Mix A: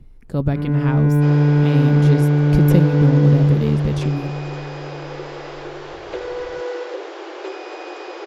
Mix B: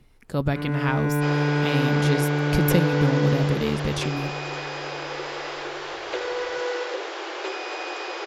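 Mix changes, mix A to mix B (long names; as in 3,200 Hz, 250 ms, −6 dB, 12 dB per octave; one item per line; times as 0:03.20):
first sound: add low-shelf EQ 140 Hz −9.5 dB
master: add tilt shelving filter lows −6 dB, about 670 Hz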